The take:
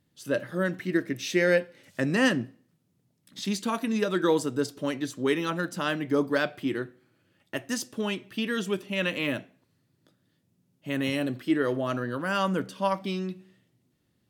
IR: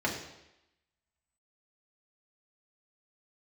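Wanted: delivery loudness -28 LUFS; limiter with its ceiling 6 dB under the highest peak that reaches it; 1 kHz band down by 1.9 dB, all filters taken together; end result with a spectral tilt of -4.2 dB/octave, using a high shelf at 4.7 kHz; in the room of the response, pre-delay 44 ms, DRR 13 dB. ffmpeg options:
-filter_complex "[0:a]equalizer=f=1000:t=o:g=-3,highshelf=f=4700:g=8,alimiter=limit=0.158:level=0:latency=1,asplit=2[s0][s1];[1:a]atrim=start_sample=2205,adelay=44[s2];[s1][s2]afir=irnorm=-1:irlink=0,volume=0.0794[s3];[s0][s3]amix=inputs=2:normalize=0,volume=1.12"

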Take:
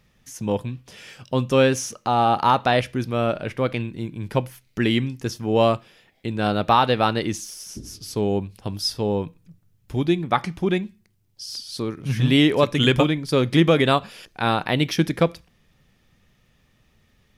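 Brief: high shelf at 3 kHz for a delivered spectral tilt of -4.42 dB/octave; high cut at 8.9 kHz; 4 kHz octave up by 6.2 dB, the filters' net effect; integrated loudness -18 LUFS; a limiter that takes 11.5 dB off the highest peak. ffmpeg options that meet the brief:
-af "lowpass=8900,highshelf=f=3000:g=5,equalizer=f=4000:t=o:g=4.5,volume=2.51,alimiter=limit=0.501:level=0:latency=1"

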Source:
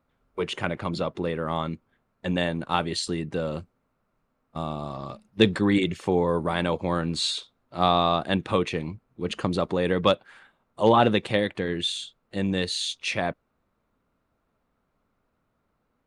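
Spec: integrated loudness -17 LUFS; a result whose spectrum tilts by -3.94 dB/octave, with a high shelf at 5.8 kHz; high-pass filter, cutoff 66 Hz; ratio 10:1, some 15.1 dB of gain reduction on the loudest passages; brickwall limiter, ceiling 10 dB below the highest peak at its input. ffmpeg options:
-af "highpass=66,highshelf=f=5800:g=-8.5,acompressor=threshold=0.0355:ratio=10,volume=9.44,alimiter=limit=0.596:level=0:latency=1"

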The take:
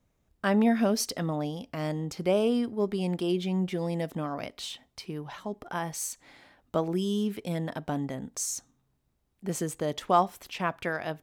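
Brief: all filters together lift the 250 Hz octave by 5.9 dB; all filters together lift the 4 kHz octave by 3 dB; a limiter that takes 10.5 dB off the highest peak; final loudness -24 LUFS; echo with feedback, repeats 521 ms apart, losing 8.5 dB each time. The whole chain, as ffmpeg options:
-af "equalizer=f=250:t=o:g=7.5,equalizer=f=4000:t=o:g=4,alimiter=limit=0.119:level=0:latency=1,aecho=1:1:521|1042|1563|2084:0.376|0.143|0.0543|0.0206,volume=1.68"

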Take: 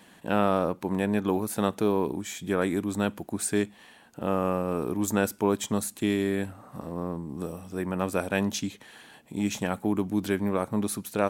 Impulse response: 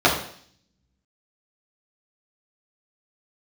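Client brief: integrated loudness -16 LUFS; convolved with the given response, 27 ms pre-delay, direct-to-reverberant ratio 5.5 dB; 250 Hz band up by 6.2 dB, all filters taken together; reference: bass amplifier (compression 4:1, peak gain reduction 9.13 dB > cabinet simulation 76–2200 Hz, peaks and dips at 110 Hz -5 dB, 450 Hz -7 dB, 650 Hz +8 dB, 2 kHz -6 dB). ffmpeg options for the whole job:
-filter_complex "[0:a]equalizer=f=250:t=o:g=9,asplit=2[s0][s1];[1:a]atrim=start_sample=2205,adelay=27[s2];[s1][s2]afir=irnorm=-1:irlink=0,volume=0.0422[s3];[s0][s3]amix=inputs=2:normalize=0,acompressor=threshold=0.0631:ratio=4,highpass=f=76:w=0.5412,highpass=f=76:w=1.3066,equalizer=f=110:t=q:w=4:g=-5,equalizer=f=450:t=q:w=4:g=-7,equalizer=f=650:t=q:w=4:g=8,equalizer=f=2000:t=q:w=4:g=-6,lowpass=f=2200:w=0.5412,lowpass=f=2200:w=1.3066,volume=4.47"

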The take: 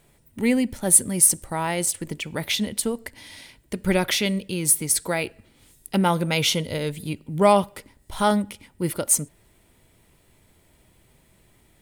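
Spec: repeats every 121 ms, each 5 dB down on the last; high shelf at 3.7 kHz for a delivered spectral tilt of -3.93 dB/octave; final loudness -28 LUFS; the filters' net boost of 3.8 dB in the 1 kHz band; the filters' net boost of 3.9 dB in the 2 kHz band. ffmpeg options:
-af "equalizer=f=1000:t=o:g=4,equalizer=f=2000:t=o:g=6,highshelf=f=3700:g=-8,aecho=1:1:121|242|363|484|605|726|847:0.562|0.315|0.176|0.0988|0.0553|0.031|0.0173,volume=0.501"

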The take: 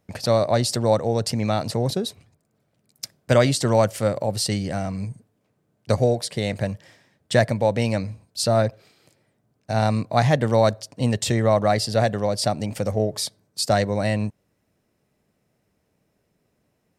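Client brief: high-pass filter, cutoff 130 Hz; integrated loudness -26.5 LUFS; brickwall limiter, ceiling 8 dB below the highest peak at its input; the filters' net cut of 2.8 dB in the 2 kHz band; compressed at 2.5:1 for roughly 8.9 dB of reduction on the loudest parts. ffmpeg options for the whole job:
-af "highpass=130,equalizer=f=2000:t=o:g=-3.5,acompressor=threshold=0.0447:ratio=2.5,volume=1.78,alimiter=limit=0.168:level=0:latency=1"

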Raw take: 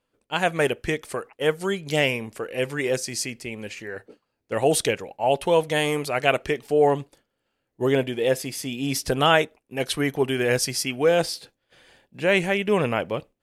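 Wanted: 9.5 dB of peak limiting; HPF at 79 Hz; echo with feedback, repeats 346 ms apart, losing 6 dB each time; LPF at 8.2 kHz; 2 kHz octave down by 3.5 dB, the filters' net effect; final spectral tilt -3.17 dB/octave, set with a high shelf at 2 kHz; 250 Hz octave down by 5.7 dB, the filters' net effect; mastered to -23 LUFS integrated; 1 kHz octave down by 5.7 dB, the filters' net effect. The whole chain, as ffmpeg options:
-af "highpass=79,lowpass=8200,equalizer=f=250:t=o:g=-7.5,equalizer=f=1000:t=o:g=-8,highshelf=f=2000:g=5,equalizer=f=2000:t=o:g=-5.5,alimiter=limit=0.168:level=0:latency=1,aecho=1:1:346|692|1038|1384|1730|2076:0.501|0.251|0.125|0.0626|0.0313|0.0157,volume=1.68"

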